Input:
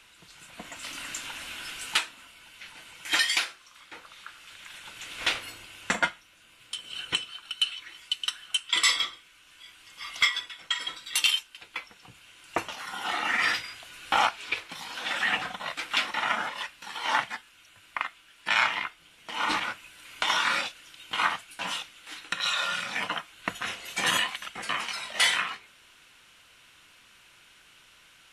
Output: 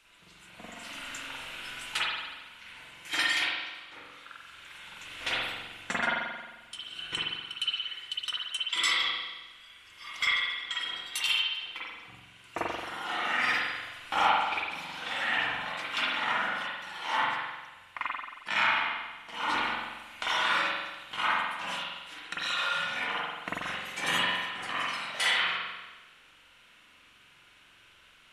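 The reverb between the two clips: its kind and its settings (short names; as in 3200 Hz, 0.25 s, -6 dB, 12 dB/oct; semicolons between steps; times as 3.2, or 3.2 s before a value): spring tank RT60 1.2 s, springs 44 ms, chirp 30 ms, DRR -6.5 dB; gain -8 dB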